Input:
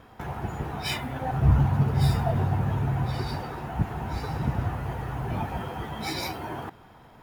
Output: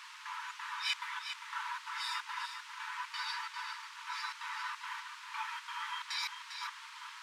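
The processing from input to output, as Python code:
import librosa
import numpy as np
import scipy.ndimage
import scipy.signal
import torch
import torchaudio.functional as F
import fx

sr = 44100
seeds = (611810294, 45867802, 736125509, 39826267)

p1 = np.diff(x, prepend=0.0)
p2 = p1 + 0.61 * np.pad(p1, (int(6.0 * sr / 1000.0), 0))[:len(p1)]
p3 = fx.over_compress(p2, sr, threshold_db=-43.0, ratio=-1.0)
p4 = p2 + F.gain(torch.from_numpy(p3), -1.5).numpy()
p5 = fx.step_gate(p4, sr, bpm=177, pattern='...xxx.xxxx.xx.', floor_db=-60.0, edge_ms=4.5)
p6 = fx.quant_dither(p5, sr, seeds[0], bits=8, dither='triangular')
p7 = fx.brickwall_highpass(p6, sr, low_hz=870.0)
p8 = fx.spacing_loss(p7, sr, db_at_10k=28)
p9 = p8 + fx.echo_single(p8, sr, ms=400, db=-8.0, dry=0)
y = F.gain(torch.from_numpy(p9), 11.0).numpy()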